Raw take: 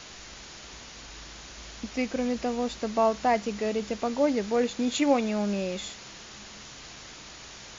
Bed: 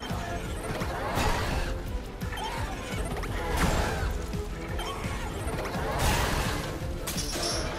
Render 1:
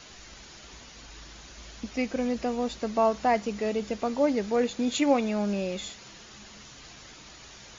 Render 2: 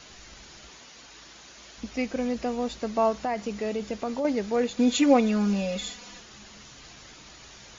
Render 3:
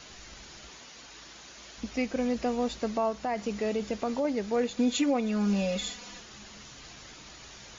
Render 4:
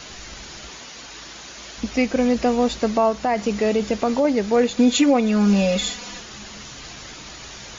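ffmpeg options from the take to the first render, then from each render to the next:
-af "afftdn=nr=6:nf=-46"
-filter_complex "[0:a]asettb=1/sr,asplit=3[a][b][c];[a]atrim=end=0.704[d];[b]atrim=start=0.7:end=1.78,asetpts=PTS-STARTPTS,afade=t=in:d=0.004:c=qsin,afade=t=out:st=1.076:d=0.004:c=qsin,highpass=f=280:p=1[e];[c]atrim=start=1.776[f];[d][e]acrossfade=d=0.004:c1=hsin:c2=qsin[g];[g][f]acrossfade=d=0.004:c1=qsin:c2=hsin,asettb=1/sr,asplit=3[h][i][j];[h]atrim=end=3.124[k];[i]atrim=start=3.12:end=4.25,asetpts=PTS-STARTPTS,afade=t=in:d=0.004:c=qsin,afade=t=out:st=1.126:d=0.004:c=qsin,acompressor=threshold=-24dB:ratio=6:attack=3.2:release=140:knee=1:detection=peak[l];[j]atrim=start=4.246[m];[k][l]acrossfade=d=0.004:c1=hsin:c2=qsin[n];[n][m]acrossfade=d=0.004:c1=qsin:c2=hsin,asettb=1/sr,asplit=3[o][p][q];[o]atrim=end=4.774[r];[p]atrim=start=4.77:end=6.2,asetpts=PTS-STARTPTS,afade=t=in:d=0.004:c=qsin,afade=t=out:st=1.426:d=0.004:c=qsin,aecho=1:1:4.1:0.98,atrim=end_sample=63063[s];[q]atrim=start=6.196[t];[r][s]acrossfade=d=0.004:c1=hsin:c2=qsin[u];[u][t]acrossfade=d=0.004:c1=qsin:c2=hsin"
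-af "alimiter=limit=-18dB:level=0:latency=1:release=455"
-af "volume=10dB"

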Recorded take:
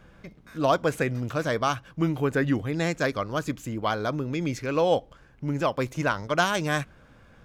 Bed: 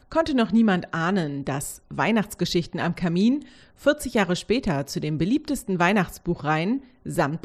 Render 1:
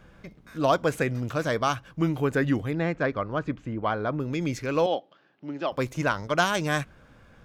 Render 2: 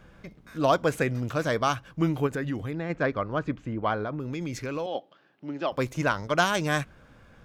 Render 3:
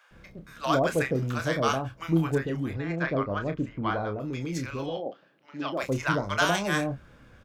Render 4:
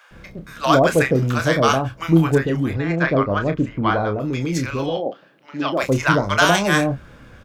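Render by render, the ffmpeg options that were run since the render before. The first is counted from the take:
-filter_complex "[0:a]asettb=1/sr,asplit=3[a][b][c];[a]atrim=end=2.734[d];[b]atrim=start=2.73:end=4.2,asetpts=PTS-STARTPTS,afade=t=in:d=0.004:c=qsin,afade=t=out:st=1.466:d=0.004:c=qsin,lowpass=2.2k[e];[c]atrim=start=4.196[f];[d][e]acrossfade=d=0.004:c1=hsin:c2=qsin[g];[g][f]acrossfade=d=0.004:c1=qsin:c2=hsin,asettb=1/sr,asplit=3[h][i][j];[h]atrim=end=4.864[k];[i]atrim=start=4.86:end=5.72,asetpts=PTS-STARTPTS,afade=t=in:d=0.004:c=qsin,afade=t=out:st=0.856:d=0.004:c=qsin,highpass=f=220:w=0.5412,highpass=f=220:w=1.3066,equalizer=f=240:t=q:w=4:g=-9,equalizer=f=470:t=q:w=4:g=-9,equalizer=f=1k:t=q:w=4:g=-7,equalizer=f=1.5k:t=q:w=4:g=-5,equalizer=f=2.2k:t=q:w=4:g=-7,lowpass=f=4.3k:w=0.5412,lowpass=f=4.3k:w=1.3066[l];[j]atrim=start=5.716[m];[k][l]acrossfade=d=0.004:c1=hsin:c2=qsin[n];[n][m]acrossfade=d=0.004:c1=qsin:c2=hsin"
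-filter_complex "[0:a]asplit=3[a][b][c];[a]afade=t=out:st=2.26:d=0.02[d];[b]acompressor=threshold=-29dB:ratio=2.5:attack=3.2:release=140:knee=1:detection=peak,afade=t=in:st=2.26:d=0.02,afade=t=out:st=2.89:d=0.02[e];[c]afade=t=in:st=2.89:d=0.02[f];[d][e][f]amix=inputs=3:normalize=0,asettb=1/sr,asplit=3[g][h][i];[g]atrim=end=4.034[j];[h]atrim=start=4.03:end=4.95,asetpts=PTS-STARTPTS,afade=t=in:d=0.004:c=qsin,afade=t=out:st=0.916:d=0.004:c=qsin,acompressor=threshold=-28dB:ratio=5:attack=3.2:release=140:knee=1:detection=peak[k];[i]atrim=start=4.946[l];[j][k]acrossfade=d=0.004:c1=hsin:c2=qsin[m];[m][l]acrossfade=d=0.004:c1=qsin:c2=hsin"
-filter_complex "[0:a]asplit=2[a][b];[b]adelay=30,volume=-8dB[c];[a][c]amix=inputs=2:normalize=0,acrossover=split=760[d][e];[d]adelay=110[f];[f][e]amix=inputs=2:normalize=0"
-af "volume=9.5dB,alimiter=limit=-2dB:level=0:latency=1"

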